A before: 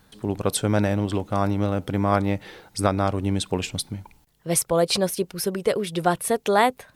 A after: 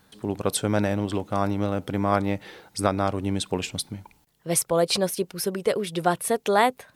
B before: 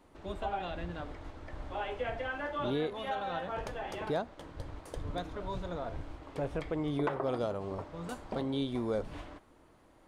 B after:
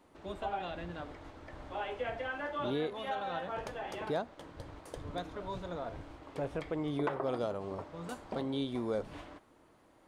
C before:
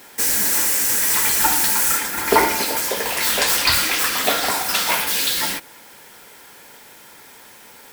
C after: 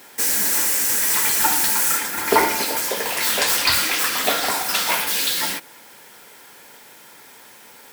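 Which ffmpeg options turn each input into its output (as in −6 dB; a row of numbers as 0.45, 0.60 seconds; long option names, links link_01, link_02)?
-af "lowshelf=frequency=64:gain=-11.5,volume=-1dB"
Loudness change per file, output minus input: −1.5, −1.5, −1.0 LU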